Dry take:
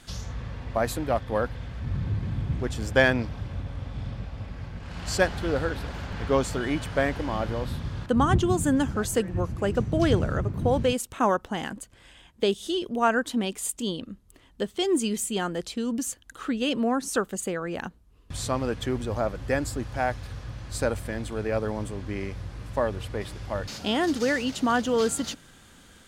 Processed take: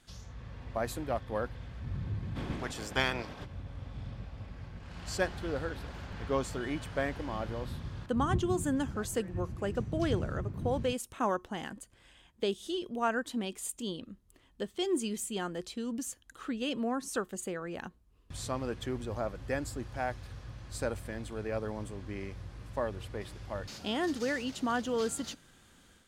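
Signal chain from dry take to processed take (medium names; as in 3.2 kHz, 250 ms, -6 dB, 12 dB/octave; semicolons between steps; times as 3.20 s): 2.35–3.44 s: spectral peaks clipped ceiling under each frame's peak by 18 dB; level rider gain up to 5 dB; feedback comb 360 Hz, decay 0.23 s, harmonics odd, mix 40%; trim -8.5 dB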